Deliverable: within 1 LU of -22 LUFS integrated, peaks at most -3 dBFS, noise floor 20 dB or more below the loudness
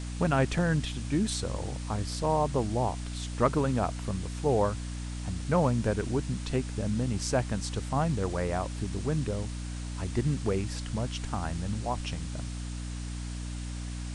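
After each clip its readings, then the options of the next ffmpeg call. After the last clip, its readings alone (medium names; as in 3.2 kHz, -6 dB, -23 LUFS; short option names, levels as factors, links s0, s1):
hum 60 Hz; highest harmonic 300 Hz; hum level -34 dBFS; noise floor -37 dBFS; noise floor target -51 dBFS; loudness -31.0 LUFS; peak level -10.5 dBFS; loudness target -22.0 LUFS
-> -af "bandreject=f=60:t=h:w=4,bandreject=f=120:t=h:w=4,bandreject=f=180:t=h:w=4,bandreject=f=240:t=h:w=4,bandreject=f=300:t=h:w=4"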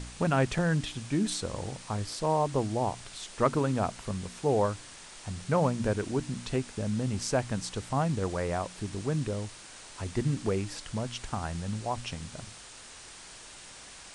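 hum not found; noise floor -48 dBFS; noise floor target -52 dBFS
-> -af "afftdn=nr=6:nf=-48"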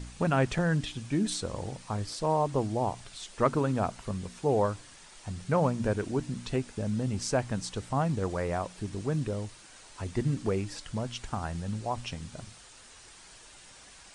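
noise floor -53 dBFS; loudness -31.5 LUFS; peak level -11.5 dBFS; loudness target -22.0 LUFS
-> -af "volume=2.99,alimiter=limit=0.708:level=0:latency=1"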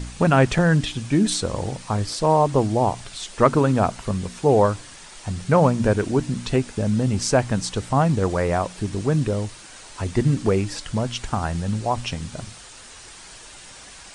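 loudness -22.0 LUFS; peak level -3.0 dBFS; noise floor -43 dBFS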